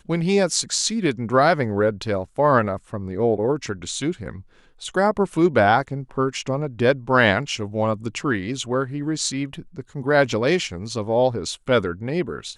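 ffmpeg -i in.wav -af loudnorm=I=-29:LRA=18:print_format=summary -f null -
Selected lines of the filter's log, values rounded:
Input Integrated:    -21.8 LUFS
Input True Peak:      -4.3 dBTP
Input LRA:             2.8 LU
Input Threshold:     -32.1 LUFS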